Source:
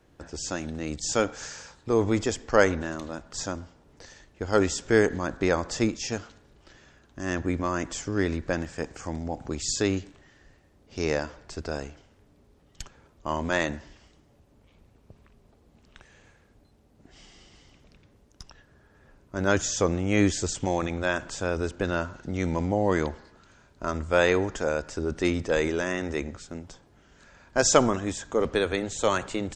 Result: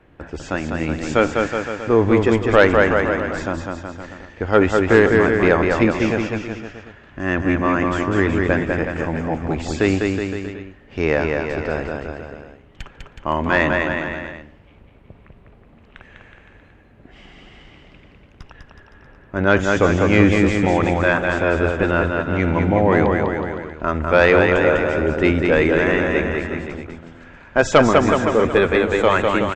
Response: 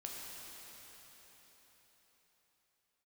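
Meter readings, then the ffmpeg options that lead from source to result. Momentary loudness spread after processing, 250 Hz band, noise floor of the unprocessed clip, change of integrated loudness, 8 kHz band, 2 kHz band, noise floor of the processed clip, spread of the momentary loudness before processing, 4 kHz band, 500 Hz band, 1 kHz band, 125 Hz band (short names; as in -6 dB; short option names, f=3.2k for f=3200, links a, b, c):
16 LU, +10.0 dB, -60 dBFS, +9.5 dB, -7.0 dB, +11.5 dB, -49 dBFS, 15 LU, +4.0 dB, +10.0 dB, +10.5 dB, +10.0 dB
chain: -af "highshelf=f=3.7k:t=q:w=1.5:g=-14,aecho=1:1:200|370|514.5|637.3|741.7:0.631|0.398|0.251|0.158|0.1,aeval=exprs='0.75*sin(PI/2*1.58*val(0)/0.75)':c=same"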